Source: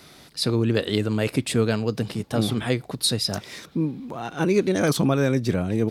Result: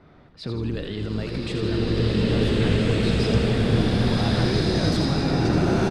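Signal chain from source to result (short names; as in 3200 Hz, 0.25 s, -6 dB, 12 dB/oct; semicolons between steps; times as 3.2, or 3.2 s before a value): limiter -20 dBFS, peak gain reduction 11 dB; low shelf 88 Hz +9.5 dB; low-pass opened by the level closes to 1200 Hz, open at -19.5 dBFS; frequency-shifting echo 81 ms, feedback 60%, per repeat -46 Hz, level -7 dB; bloom reverb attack 1.77 s, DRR -9 dB; gain -2 dB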